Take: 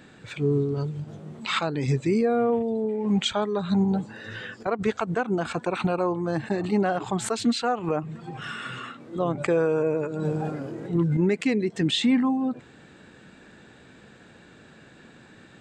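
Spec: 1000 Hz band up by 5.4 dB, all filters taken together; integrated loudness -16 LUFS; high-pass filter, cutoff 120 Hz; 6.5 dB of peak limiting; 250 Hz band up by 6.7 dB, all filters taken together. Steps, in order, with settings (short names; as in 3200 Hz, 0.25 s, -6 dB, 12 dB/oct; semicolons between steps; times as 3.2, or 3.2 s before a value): HPF 120 Hz; bell 250 Hz +8.5 dB; bell 1000 Hz +7 dB; gain +7 dB; limiter -5.5 dBFS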